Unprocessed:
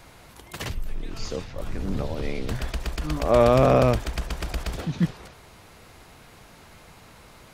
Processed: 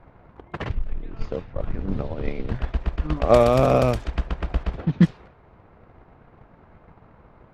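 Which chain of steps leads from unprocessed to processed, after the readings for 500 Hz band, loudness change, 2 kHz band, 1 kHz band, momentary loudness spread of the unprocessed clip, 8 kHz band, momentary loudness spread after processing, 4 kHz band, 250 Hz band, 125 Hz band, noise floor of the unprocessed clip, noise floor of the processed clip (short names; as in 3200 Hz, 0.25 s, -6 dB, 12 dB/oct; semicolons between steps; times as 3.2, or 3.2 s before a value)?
+1.0 dB, +1.5 dB, -1.0 dB, +0.5 dB, 18 LU, n/a, 16 LU, -3.5 dB, +2.5 dB, +2.0 dB, -50 dBFS, -54 dBFS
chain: low-pass opened by the level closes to 1400 Hz, open at -13.5 dBFS; transient shaper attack +10 dB, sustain -2 dB; mismatched tape noise reduction decoder only; gain -1 dB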